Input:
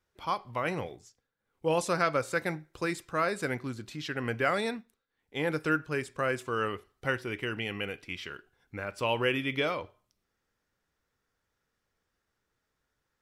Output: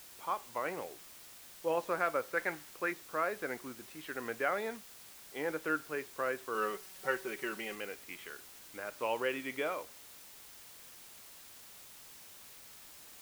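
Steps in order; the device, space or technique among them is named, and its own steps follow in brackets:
wax cylinder (band-pass filter 330–2,100 Hz; tape wow and flutter; white noise bed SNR 14 dB)
0:02.37–0:02.92: dynamic equaliser 1,700 Hz, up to +7 dB, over −49 dBFS, Q 1.3
0:06.54–0:07.75: comb filter 5.3 ms, depth 74%
level −4 dB

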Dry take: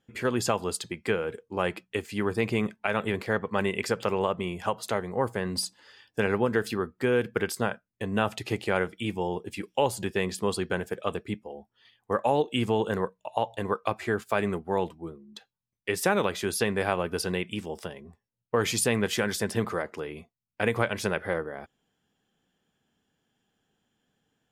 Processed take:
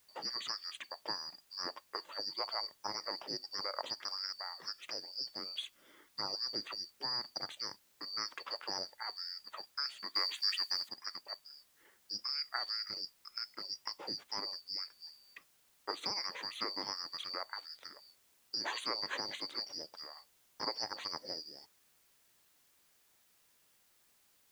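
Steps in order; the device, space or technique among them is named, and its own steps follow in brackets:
split-band scrambled radio (band-splitting scrambler in four parts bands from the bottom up 2341; band-pass filter 360–3,200 Hz; white noise bed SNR 27 dB)
0:10.15–0:10.89: tilt shelving filter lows −8.5 dB, about 1,100 Hz
level −6 dB

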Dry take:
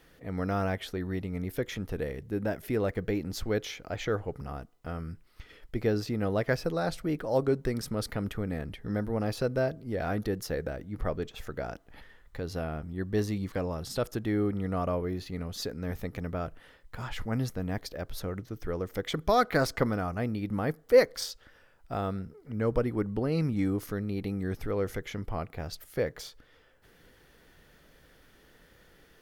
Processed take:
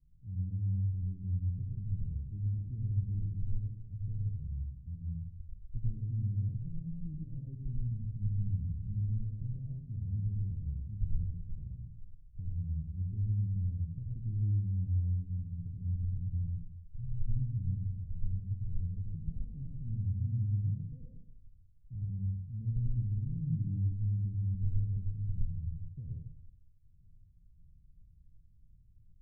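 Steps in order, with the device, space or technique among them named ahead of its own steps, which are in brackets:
club heard from the street (brickwall limiter −20.5 dBFS, peak gain reduction 10 dB; low-pass filter 130 Hz 24 dB per octave; convolution reverb RT60 0.65 s, pre-delay 78 ms, DRR −2.5 dB)

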